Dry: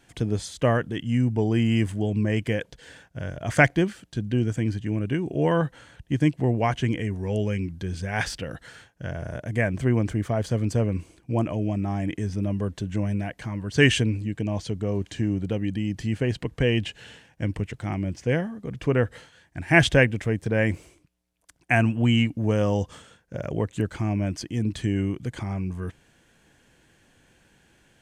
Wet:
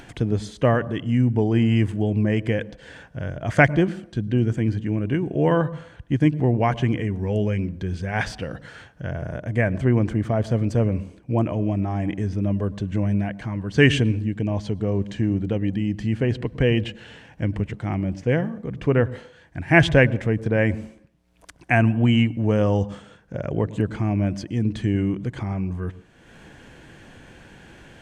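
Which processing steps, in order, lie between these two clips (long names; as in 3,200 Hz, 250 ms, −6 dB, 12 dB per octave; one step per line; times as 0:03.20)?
low-pass filter 2,600 Hz 6 dB per octave
upward compression, threshold −37 dBFS
on a send: convolution reverb RT60 0.70 s, pre-delay 98 ms, DRR 21 dB
on the sum: level +3 dB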